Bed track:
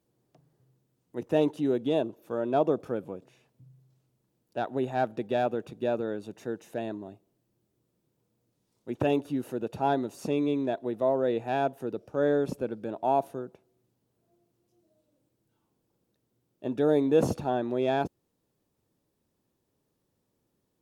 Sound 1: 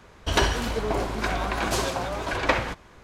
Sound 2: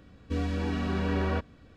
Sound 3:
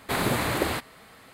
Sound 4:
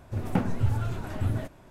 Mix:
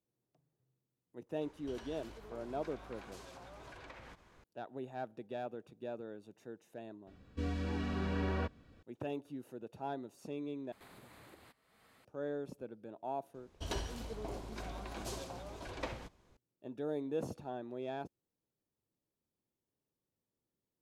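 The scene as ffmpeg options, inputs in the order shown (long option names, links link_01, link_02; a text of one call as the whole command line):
ffmpeg -i bed.wav -i cue0.wav -i cue1.wav -i cue2.wav -filter_complex "[1:a]asplit=2[link_01][link_02];[0:a]volume=-14.5dB[link_03];[link_01]acompressor=threshold=-37dB:ratio=6:attack=3.2:release=140:knee=1:detection=peak[link_04];[3:a]acompressor=threshold=-44dB:ratio=3:attack=1.6:release=474:knee=1:detection=peak[link_05];[link_02]equalizer=frequency=1600:width=0.75:gain=-8[link_06];[link_03]asplit=2[link_07][link_08];[link_07]atrim=end=10.724[link_09];[link_05]atrim=end=1.33,asetpts=PTS-STARTPTS,volume=-14.5dB[link_10];[link_08]atrim=start=12.046[link_11];[link_04]atrim=end=3.03,asetpts=PTS-STARTPTS,volume=-12.5dB,afade=type=in:duration=0.004:curve=hsin,afade=type=out:start_time=3.026:duration=0.004:curve=hsin,adelay=1410[link_12];[2:a]atrim=end=1.76,asetpts=PTS-STARTPTS,volume=-7dB,afade=type=in:duration=0.004:curve=hsin,afade=type=out:start_time=1.756:duration=0.004:curve=hsin,adelay=7070[link_13];[link_06]atrim=end=3.03,asetpts=PTS-STARTPTS,volume=-15dB,afade=type=in:duration=0.004:curve=hsin,afade=type=out:start_time=3.026:duration=0.004:curve=hsin,adelay=13340[link_14];[link_09][link_10]acrossfade=duration=0.004:curve1=hsin:curve2=hsin[link_15];[link_15][link_11]acrossfade=duration=0.004:curve1=hsin:curve2=hsin[link_16];[link_16][link_12][link_13][link_14]amix=inputs=4:normalize=0" out.wav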